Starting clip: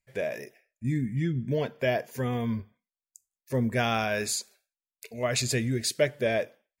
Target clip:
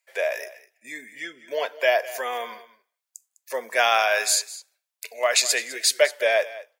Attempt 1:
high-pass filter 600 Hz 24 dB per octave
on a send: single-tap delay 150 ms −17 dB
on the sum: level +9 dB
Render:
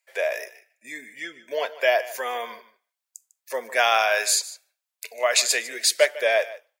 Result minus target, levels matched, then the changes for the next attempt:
echo 54 ms early
change: single-tap delay 204 ms −17 dB

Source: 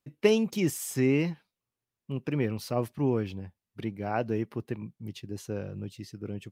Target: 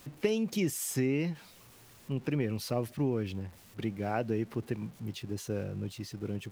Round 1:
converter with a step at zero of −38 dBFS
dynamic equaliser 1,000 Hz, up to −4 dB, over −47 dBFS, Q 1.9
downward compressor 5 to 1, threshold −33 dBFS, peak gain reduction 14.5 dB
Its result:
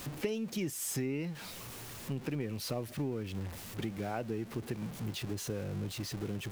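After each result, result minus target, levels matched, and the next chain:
converter with a step at zero: distortion +10 dB; downward compressor: peak gain reduction +6 dB
converter with a step at zero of −48.5 dBFS
dynamic equaliser 1,000 Hz, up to −4 dB, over −47 dBFS, Q 1.9
downward compressor 5 to 1, threshold −33 dBFS, peak gain reduction 14.5 dB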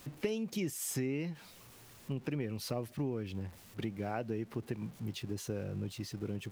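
downward compressor: peak gain reduction +6 dB
converter with a step at zero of −48.5 dBFS
dynamic equaliser 1,000 Hz, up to −4 dB, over −47 dBFS, Q 1.9
downward compressor 5 to 1, threshold −25.5 dBFS, peak gain reduction 8.5 dB

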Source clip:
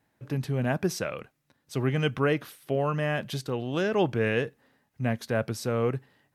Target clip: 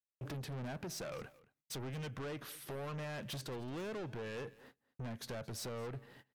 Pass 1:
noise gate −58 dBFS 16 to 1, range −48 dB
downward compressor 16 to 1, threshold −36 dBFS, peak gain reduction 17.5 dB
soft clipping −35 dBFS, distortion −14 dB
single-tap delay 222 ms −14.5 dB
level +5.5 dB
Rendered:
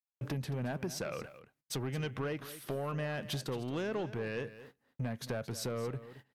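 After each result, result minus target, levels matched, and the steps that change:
soft clipping: distortion −8 dB; echo-to-direct +6.5 dB
change: soft clipping −45.5 dBFS, distortion −6 dB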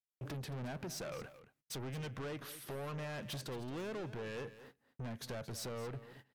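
echo-to-direct +6.5 dB
change: single-tap delay 222 ms −21 dB

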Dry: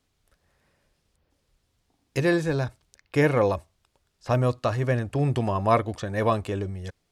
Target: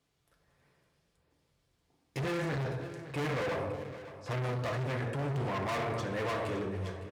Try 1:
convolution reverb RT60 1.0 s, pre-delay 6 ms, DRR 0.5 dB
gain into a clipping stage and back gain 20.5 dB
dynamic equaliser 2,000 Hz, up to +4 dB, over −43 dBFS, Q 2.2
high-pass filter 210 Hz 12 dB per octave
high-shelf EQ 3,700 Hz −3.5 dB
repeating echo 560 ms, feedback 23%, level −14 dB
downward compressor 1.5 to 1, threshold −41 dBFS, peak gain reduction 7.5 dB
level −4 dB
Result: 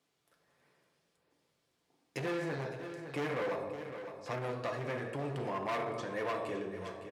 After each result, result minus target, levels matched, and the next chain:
downward compressor: peak gain reduction +7.5 dB; 125 Hz band −5.5 dB; gain into a clipping stage and back: distortion −4 dB
convolution reverb RT60 1.0 s, pre-delay 6 ms, DRR 0.5 dB
gain into a clipping stage and back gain 20.5 dB
dynamic equaliser 2,000 Hz, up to +4 dB, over −43 dBFS, Q 2.2
high-pass filter 210 Hz 12 dB per octave
high-shelf EQ 3,700 Hz −3.5 dB
repeating echo 560 ms, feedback 23%, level −14 dB
level −4 dB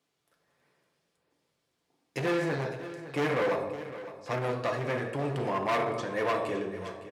125 Hz band −6.0 dB; gain into a clipping stage and back: distortion −4 dB
convolution reverb RT60 1.0 s, pre-delay 6 ms, DRR 0.5 dB
gain into a clipping stage and back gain 20.5 dB
dynamic equaliser 2,000 Hz, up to +4 dB, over −43 dBFS, Q 2.2
high-pass filter 64 Hz 12 dB per octave
high-shelf EQ 3,700 Hz −3.5 dB
repeating echo 560 ms, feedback 23%, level −14 dB
level −4 dB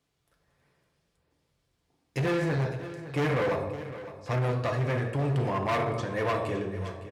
gain into a clipping stage and back: distortion −4 dB
convolution reverb RT60 1.0 s, pre-delay 6 ms, DRR 0.5 dB
gain into a clipping stage and back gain 28 dB
dynamic equaliser 2,000 Hz, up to +4 dB, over −43 dBFS, Q 2.2
high-pass filter 64 Hz 12 dB per octave
high-shelf EQ 3,700 Hz −3.5 dB
repeating echo 560 ms, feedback 23%, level −14 dB
level −4 dB

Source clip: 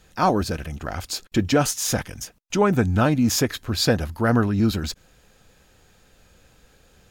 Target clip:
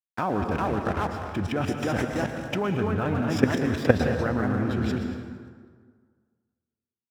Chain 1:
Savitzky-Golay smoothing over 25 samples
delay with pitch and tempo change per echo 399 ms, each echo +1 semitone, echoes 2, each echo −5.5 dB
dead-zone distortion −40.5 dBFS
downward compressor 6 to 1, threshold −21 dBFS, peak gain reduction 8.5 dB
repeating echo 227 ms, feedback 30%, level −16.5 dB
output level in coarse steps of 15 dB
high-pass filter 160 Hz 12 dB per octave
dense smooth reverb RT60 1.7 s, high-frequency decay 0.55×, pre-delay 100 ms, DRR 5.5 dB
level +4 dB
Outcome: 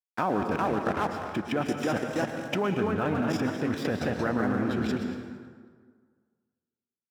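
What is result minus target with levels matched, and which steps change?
downward compressor: peak gain reduction +8.5 dB; 125 Hz band −4.0 dB
change: high-pass filter 62 Hz 12 dB per octave
remove: downward compressor 6 to 1, threshold −21 dBFS, peak gain reduction 8.5 dB

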